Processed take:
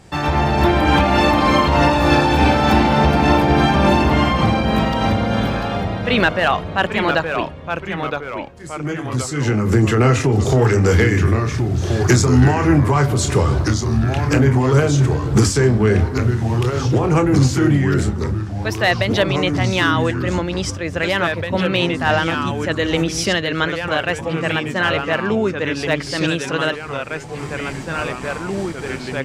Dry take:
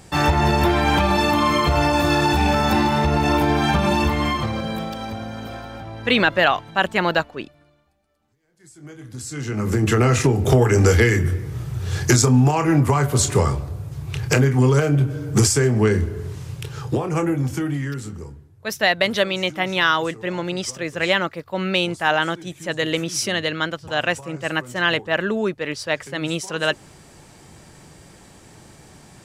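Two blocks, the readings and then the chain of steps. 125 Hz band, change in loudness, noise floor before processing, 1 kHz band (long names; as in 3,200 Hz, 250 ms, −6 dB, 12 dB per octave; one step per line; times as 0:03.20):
+4.0 dB, +2.5 dB, −50 dBFS, +3.5 dB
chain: high-shelf EQ 7,400 Hz −11 dB
automatic gain control gain up to 15 dB
in parallel at 0 dB: brickwall limiter −12 dBFS, peak gain reduction 11.5 dB
on the sum: hard clipping −0.5 dBFS, distortion −34 dB
shaped tremolo triangle 3.4 Hz, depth 40%
delay with pitch and tempo change per echo 89 ms, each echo −2 semitones, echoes 3, each echo −6 dB
level −4.5 dB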